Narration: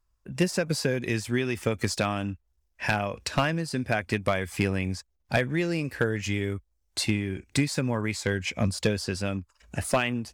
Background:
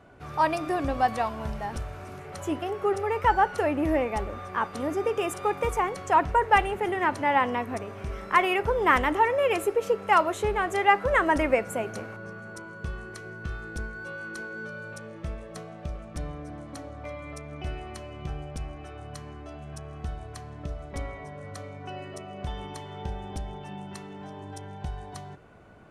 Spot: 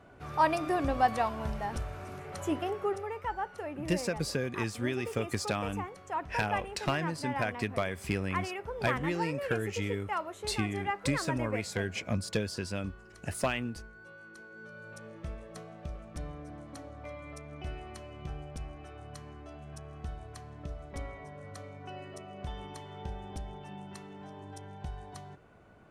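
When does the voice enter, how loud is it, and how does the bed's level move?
3.50 s, -6.0 dB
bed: 2.67 s -2 dB
3.26 s -13.5 dB
14.43 s -13.5 dB
15.06 s -5.5 dB

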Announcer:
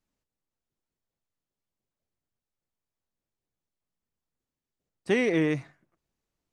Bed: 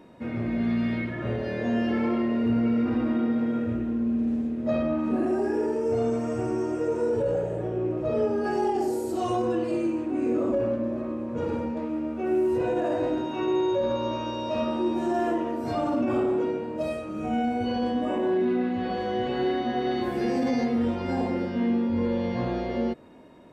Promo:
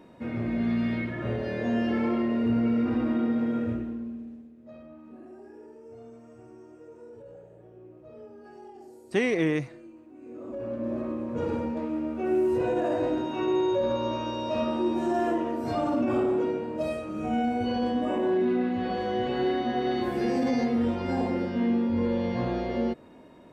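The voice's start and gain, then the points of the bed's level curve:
4.05 s, -0.5 dB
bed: 3.70 s -1 dB
4.52 s -21.5 dB
10.19 s -21.5 dB
10.93 s -0.5 dB

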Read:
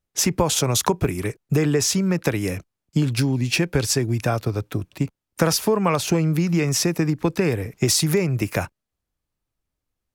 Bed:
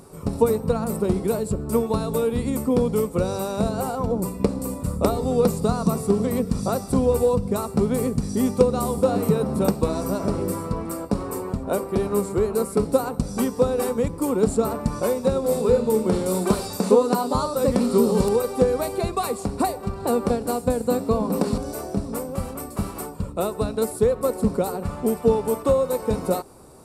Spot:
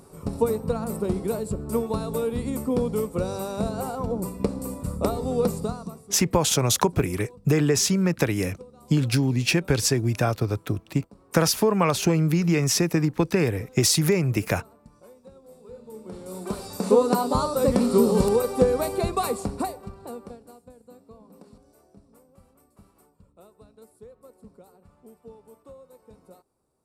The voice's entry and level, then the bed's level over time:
5.95 s, -1.0 dB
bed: 5.59 s -4 dB
6.19 s -27.5 dB
15.61 s -27.5 dB
17.02 s -0.5 dB
19.36 s -0.5 dB
20.70 s -27.5 dB

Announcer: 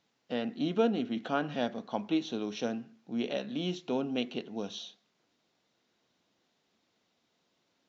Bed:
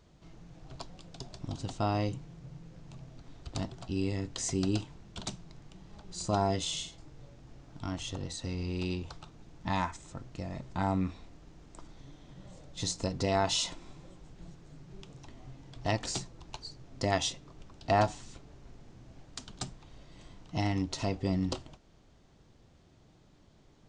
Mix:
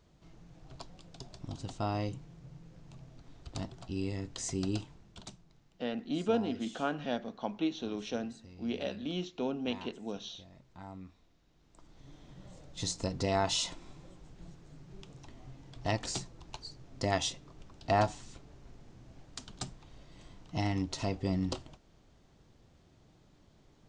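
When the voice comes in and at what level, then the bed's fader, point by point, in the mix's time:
5.50 s, -2.5 dB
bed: 4.85 s -3.5 dB
5.79 s -17 dB
11.49 s -17 dB
12.14 s -1.5 dB

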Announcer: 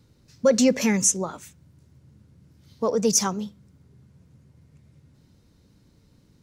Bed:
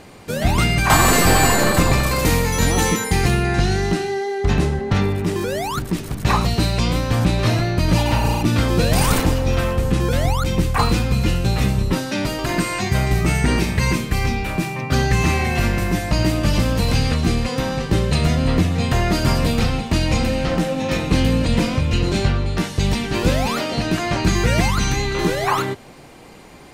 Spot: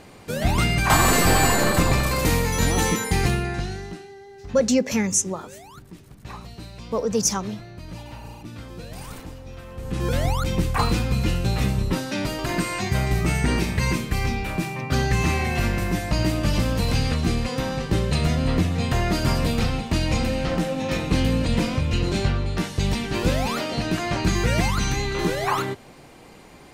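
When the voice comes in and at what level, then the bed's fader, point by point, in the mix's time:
4.10 s, -1.0 dB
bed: 3.26 s -3.5 dB
4.16 s -20.5 dB
9.66 s -20.5 dB
10.07 s -4 dB

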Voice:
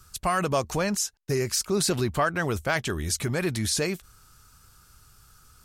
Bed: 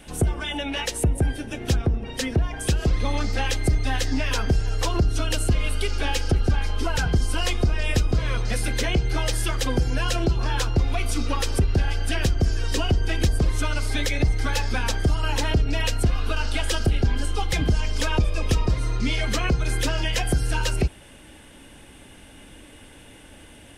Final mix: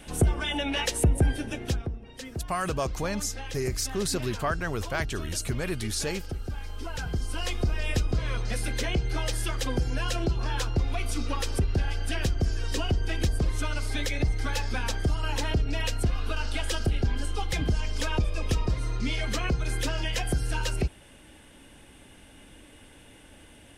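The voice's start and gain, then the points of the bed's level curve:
2.25 s, -4.5 dB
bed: 1.49 s -0.5 dB
1.99 s -13.5 dB
6.52 s -13.5 dB
7.70 s -5 dB

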